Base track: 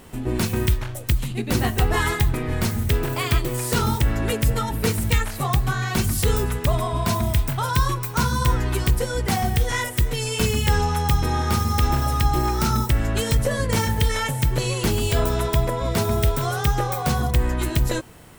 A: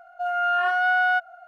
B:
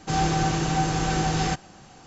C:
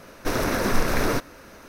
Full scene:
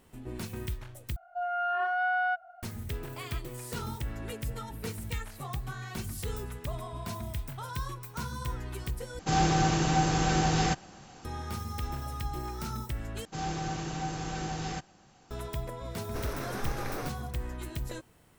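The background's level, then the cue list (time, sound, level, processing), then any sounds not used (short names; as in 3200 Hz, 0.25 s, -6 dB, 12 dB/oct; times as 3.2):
base track -15.5 dB
1.16 replace with A -3.5 dB + EQ curve 440 Hz 0 dB, 1700 Hz -6 dB, 4600 Hz -11 dB
9.19 replace with B -2 dB
13.25 replace with B -11 dB
15.89 add C -14 dB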